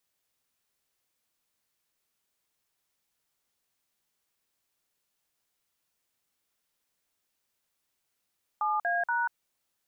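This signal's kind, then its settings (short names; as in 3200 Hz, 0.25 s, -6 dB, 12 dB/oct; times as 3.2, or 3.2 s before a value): DTMF "7A#", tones 0.189 s, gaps 49 ms, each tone -28 dBFS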